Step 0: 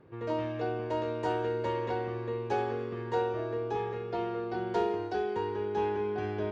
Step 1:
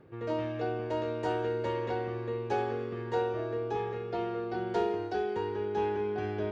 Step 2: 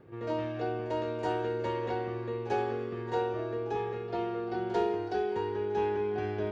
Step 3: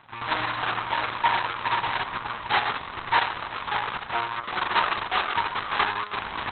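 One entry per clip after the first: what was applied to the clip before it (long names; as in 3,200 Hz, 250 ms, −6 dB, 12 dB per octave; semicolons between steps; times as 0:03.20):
notch filter 1,000 Hz, Q 8.7; reversed playback; upward compression, threshold −39 dBFS; reversed playback
backwards echo 46 ms −15.5 dB
each half-wave held at its own peak; low shelf with overshoot 690 Hz −12 dB, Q 3; level +6.5 dB; Opus 6 kbit/s 48,000 Hz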